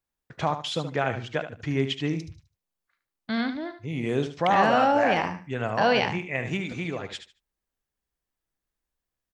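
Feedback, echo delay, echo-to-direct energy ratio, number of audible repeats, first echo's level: 22%, 74 ms, −10.0 dB, 2, −10.0 dB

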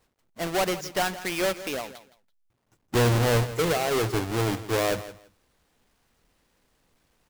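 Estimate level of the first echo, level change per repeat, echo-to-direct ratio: −15.0 dB, −15.0 dB, −15.0 dB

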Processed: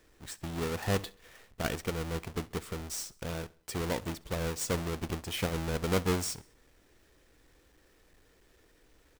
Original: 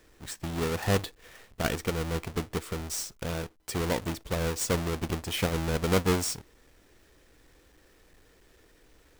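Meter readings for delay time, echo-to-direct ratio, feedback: 66 ms, −22.0 dB, 48%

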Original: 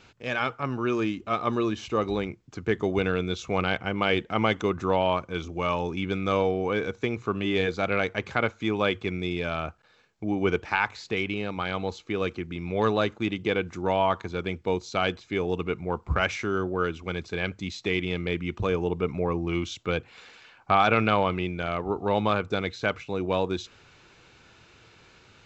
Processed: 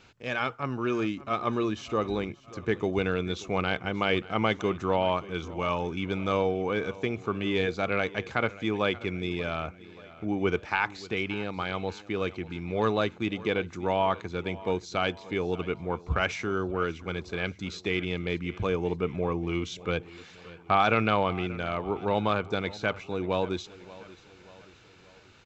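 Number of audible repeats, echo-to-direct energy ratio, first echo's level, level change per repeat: 3, −18.0 dB, −19.0 dB, −6.0 dB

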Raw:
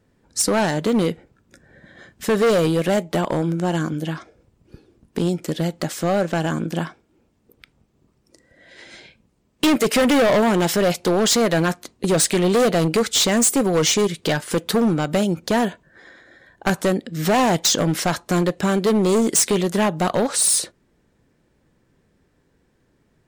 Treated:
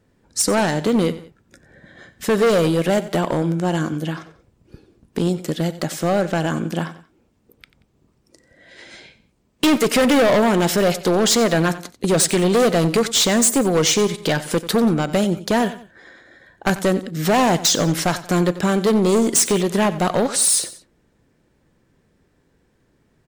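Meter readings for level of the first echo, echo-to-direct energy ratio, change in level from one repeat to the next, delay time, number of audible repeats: −15.5 dB, −15.0 dB, −8.0 dB, 91 ms, 2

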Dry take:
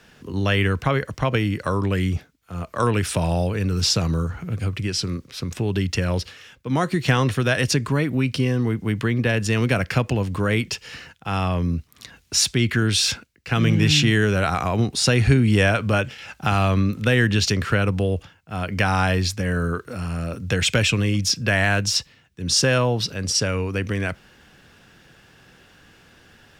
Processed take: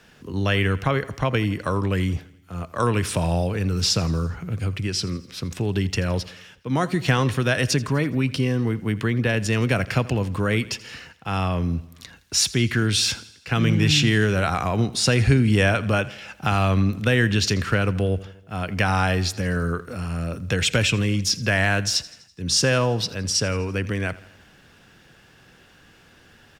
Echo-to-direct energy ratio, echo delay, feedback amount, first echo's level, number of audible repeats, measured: −18.0 dB, 83 ms, 56%, −19.5 dB, 4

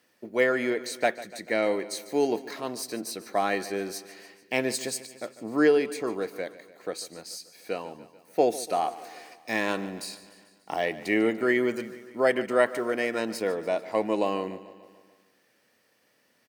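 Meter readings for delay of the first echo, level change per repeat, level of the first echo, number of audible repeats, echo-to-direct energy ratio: 146 ms, −4.5 dB, −16.5 dB, 5, −14.5 dB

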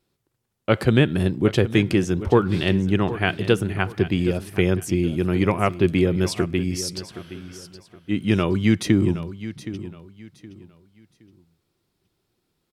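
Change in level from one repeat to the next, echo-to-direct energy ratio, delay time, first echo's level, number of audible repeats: −11.0 dB, −13.5 dB, 769 ms, −14.0 dB, 2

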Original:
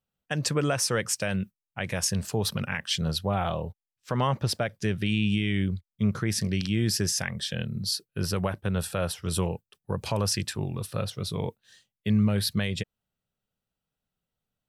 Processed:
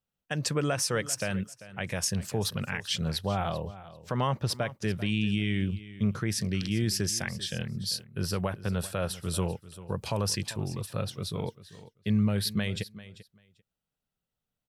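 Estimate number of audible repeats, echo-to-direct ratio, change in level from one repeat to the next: 2, −16.5 dB, −16.0 dB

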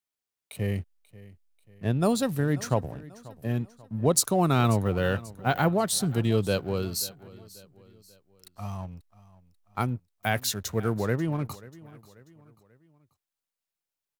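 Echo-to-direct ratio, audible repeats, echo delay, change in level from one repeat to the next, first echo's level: −19.0 dB, 3, 538 ms, −7.0 dB, −20.0 dB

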